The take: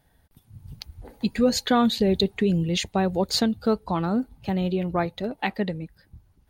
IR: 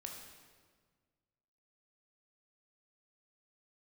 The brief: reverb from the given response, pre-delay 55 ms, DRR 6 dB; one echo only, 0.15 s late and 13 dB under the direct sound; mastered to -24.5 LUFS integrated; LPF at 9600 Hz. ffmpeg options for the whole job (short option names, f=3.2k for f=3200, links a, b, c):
-filter_complex "[0:a]lowpass=9.6k,aecho=1:1:150:0.224,asplit=2[a][b];[1:a]atrim=start_sample=2205,adelay=55[c];[b][c]afir=irnorm=-1:irlink=0,volume=-3dB[d];[a][d]amix=inputs=2:normalize=0,volume=-1dB"